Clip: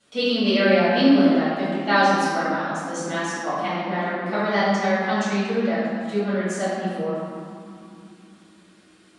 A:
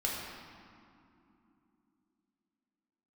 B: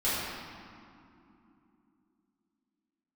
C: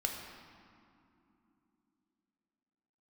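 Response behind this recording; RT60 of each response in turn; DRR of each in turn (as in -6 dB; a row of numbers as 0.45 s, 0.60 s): B; 2.9 s, 2.9 s, 3.0 s; -4.0 dB, -12.5 dB, 1.0 dB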